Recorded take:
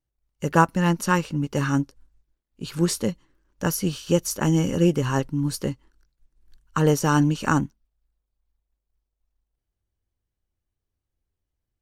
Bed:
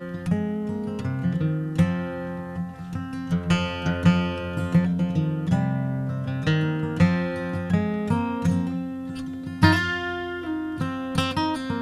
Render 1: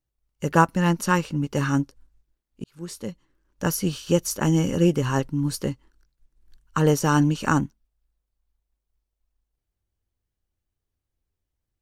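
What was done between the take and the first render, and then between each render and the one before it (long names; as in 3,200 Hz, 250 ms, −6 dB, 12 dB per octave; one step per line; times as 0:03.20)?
0:02.64–0:03.67: fade in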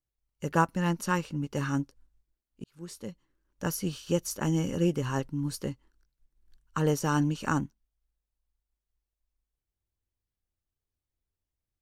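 level −7 dB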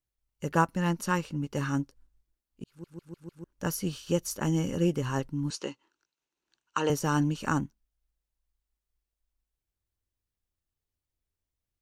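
0:02.69: stutter in place 0.15 s, 5 plays
0:05.50–0:06.90: loudspeaker in its box 320–8,100 Hz, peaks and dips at 350 Hz +4 dB, 940 Hz +6 dB, 1,400 Hz +4 dB, 2,700 Hz +9 dB, 3,900 Hz +4 dB, 6,300 Hz +6 dB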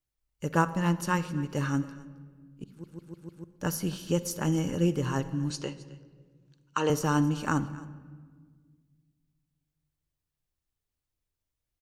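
single-tap delay 267 ms −19.5 dB
rectangular room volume 2,000 cubic metres, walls mixed, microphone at 0.45 metres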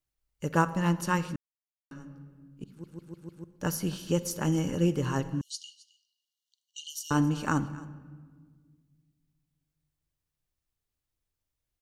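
0:01.36–0:01.91: silence
0:05.41–0:07.11: linear-phase brick-wall high-pass 2,800 Hz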